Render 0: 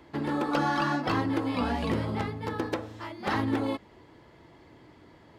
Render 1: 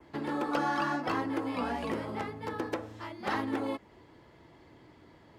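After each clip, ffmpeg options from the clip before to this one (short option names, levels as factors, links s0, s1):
-filter_complex "[0:a]adynamicequalizer=threshold=0.00178:dfrequency=3900:dqfactor=1.8:tfrequency=3900:tqfactor=1.8:attack=5:release=100:ratio=0.375:range=3:mode=cutabove:tftype=bell,acrossover=split=240|730[s0][s1][s2];[s0]acompressor=threshold=0.00708:ratio=6[s3];[s3][s1][s2]amix=inputs=3:normalize=0,volume=0.75"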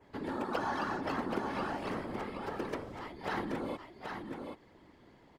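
-af "afftfilt=real='hypot(re,im)*cos(2*PI*random(0))':imag='hypot(re,im)*sin(2*PI*random(1))':win_size=512:overlap=0.75,aecho=1:1:778:0.531,volume=1.19"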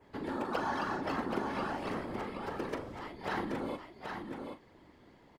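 -filter_complex "[0:a]asplit=2[s0][s1];[s1]adelay=40,volume=0.282[s2];[s0][s2]amix=inputs=2:normalize=0"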